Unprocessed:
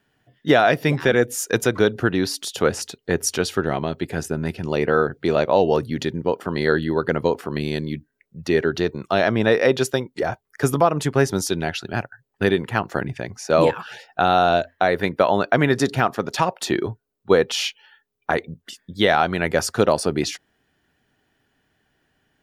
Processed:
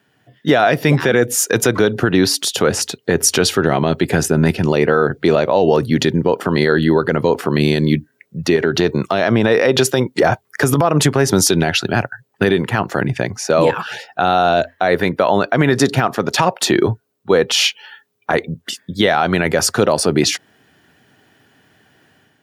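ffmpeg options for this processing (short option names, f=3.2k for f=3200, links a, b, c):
-filter_complex "[0:a]asettb=1/sr,asplit=3[a][b][c];[a]atrim=end=8.564[d];[b]atrim=start=8.56:end=11.31,asetpts=PTS-STARTPTS,afade=t=in:d=0.004:c=qsin,afade=t=out:st=2.746:d=0.004:c=qsin,acompressor=threshold=-20dB:ratio=6:attack=3.2:release=140:knee=1:detection=peak[e];[c]atrim=start=11.306[f];[d][e]acrossfade=d=0.004:c1=hsin:c2=qsin[g];[g][f]acrossfade=d=0.004:c1=qsin:c2=hsin,highpass=f=88:w=0.5412,highpass=f=88:w=1.3066,dynaudnorm=f=110:g=5:m=7dB,alimiter=level_in=9dB:limit=-1dB:release=50:level=0:latency=1,volume=-2dB"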